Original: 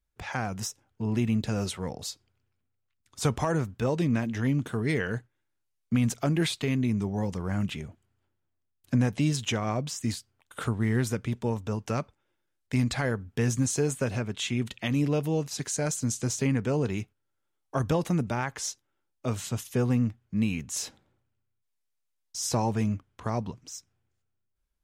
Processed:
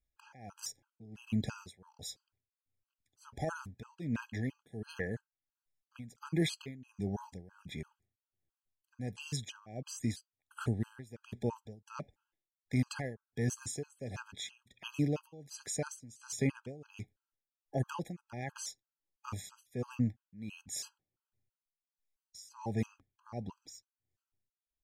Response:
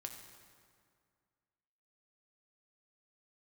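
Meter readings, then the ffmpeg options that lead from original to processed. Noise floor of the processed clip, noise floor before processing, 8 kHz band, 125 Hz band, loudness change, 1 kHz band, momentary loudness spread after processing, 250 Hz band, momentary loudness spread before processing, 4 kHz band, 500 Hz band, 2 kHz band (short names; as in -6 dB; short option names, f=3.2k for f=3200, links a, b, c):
under -85 dBFS, -79 dBFS, -10.0 dB, -11.0 dB, -10.5 dB, -12.0 dB, 17 LU, -11.0 dB, 10 LU, -9.5 dB, -11.5 dB, -10.5 dB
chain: -af "tremolo=f=1.4:d=0.91,afftfilt=real='re*gt(sin(2*PI*3*pts/sr)*(1-2*mod(floor(b*sr/1024/820),2)),0)':imag='im*gt(sin(2*PI*3*pts/sr)*(1-2*mod(floor(b*sr/1024/820),2)),0)':win_size=1024:overlap=0.75,volume=-3.5dB"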